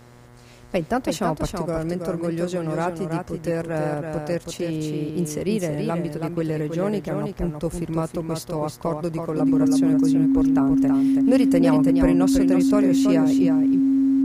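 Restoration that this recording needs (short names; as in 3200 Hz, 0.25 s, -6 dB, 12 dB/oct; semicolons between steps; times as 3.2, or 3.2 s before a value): de-hum 121 Hz, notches 18; notch 270 Hz, Q 30; inverse comb 0.326 s -5.5 dB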